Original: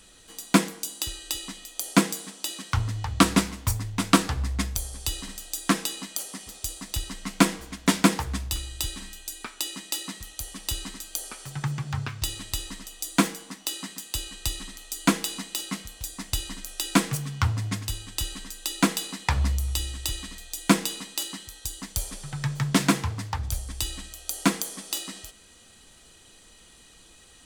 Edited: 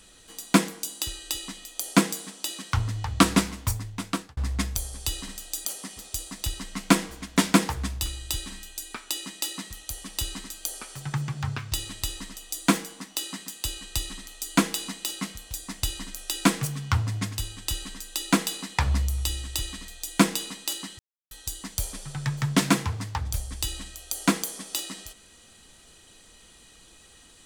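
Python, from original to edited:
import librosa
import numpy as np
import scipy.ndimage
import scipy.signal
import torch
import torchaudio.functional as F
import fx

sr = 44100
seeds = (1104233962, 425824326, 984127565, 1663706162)

y = fx.edit(x, sr, fx.fade_out_span(start_s=3.59, length_s=0.78),
    fx.cut(start_s=5.65, length_s=0.5),
    fx.insert_silence(at_s=21.49, length_s=0.32), tone=tone)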